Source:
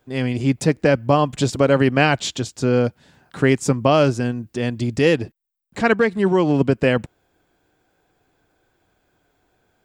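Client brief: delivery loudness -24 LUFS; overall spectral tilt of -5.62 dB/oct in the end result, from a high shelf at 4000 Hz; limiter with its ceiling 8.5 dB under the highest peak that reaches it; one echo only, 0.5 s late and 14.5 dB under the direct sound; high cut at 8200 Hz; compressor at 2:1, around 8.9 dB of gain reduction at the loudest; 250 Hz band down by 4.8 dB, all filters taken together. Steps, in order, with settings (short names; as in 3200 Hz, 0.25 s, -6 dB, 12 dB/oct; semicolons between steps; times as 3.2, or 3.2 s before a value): LPF 8200 Hz; bell 250 Hz -6 dB; high shelf 4000 Hz -9 dB; compressor 2:1, threshold -30 dBFS; limiter -20.5 dBFS; echo 0.5 s -14.5 dB; gain +7.5 dB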